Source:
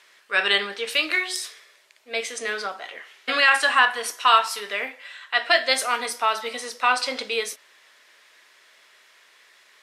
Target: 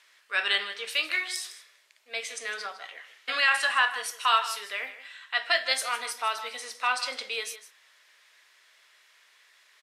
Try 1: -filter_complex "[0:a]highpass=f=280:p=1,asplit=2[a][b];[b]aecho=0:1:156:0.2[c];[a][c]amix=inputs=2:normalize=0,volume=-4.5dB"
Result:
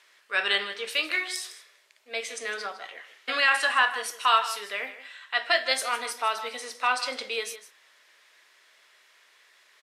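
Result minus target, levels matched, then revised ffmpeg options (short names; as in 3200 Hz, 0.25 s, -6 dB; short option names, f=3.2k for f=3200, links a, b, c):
250 Hz band +6.5 dB
-filter_complex "[0:a]highpass=f=940:p=1,asplit=2[a][b];[b]aecho=0:1:156:0.2[c];[a][c]amix=inputs=2:normalize=0,volume=-4.5dB"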